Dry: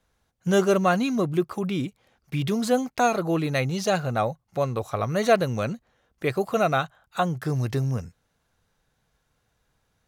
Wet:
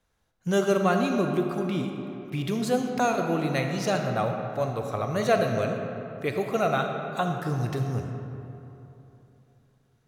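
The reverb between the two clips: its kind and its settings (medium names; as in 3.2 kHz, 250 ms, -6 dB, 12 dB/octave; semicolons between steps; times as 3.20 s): algorithmic reverb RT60 3.2 s, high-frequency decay 0.5×, pre-delay 5 ms, DRR 3.5 dB; trim -3.5 dB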